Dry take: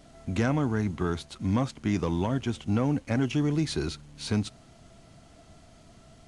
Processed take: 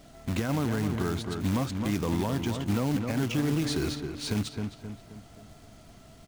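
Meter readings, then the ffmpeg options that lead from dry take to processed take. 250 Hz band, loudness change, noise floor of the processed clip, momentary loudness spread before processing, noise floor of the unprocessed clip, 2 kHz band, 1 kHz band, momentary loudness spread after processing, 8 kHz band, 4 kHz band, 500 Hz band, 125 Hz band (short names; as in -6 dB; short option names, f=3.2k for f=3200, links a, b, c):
-1.0 dB, -1.0 dB, -52 dBFS, 6 LU, -55 dBFS, -0.5 dB, -1.0 dB, 10 LU, +3.0 dB, +2.0 dB, -1.0 dB, -1.0 dB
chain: -filter_complex "[0:a]acrusher=bits=3:mode=log:mix=0:aa=0.000001,asplit=2[a][b];[b]adelay=263,lowpass=f=2.5k:p=1,volume=-8dB,asplit=2[c][d];[d]adelay=263,lowpass=f=2.5k:p=1,volume=0.46,asplit=2[e][f];[f]adelay=263,lowpass=f=2.5k:p=1,volume=0.46,asplit=2[g][h];[h]adelay=263,lowpass=f=2.5k:p=1,volume=0.46,asplit=2[i][j];[j]adelay=263,lowpass=f=2.5k:p=1,volume=0.46[k];[a][c][e][g][i][k]amix=inputs=6:normalize=0,alimiter=limit=-19.5dB:level=0:latency=1:release=45,volume=1dB"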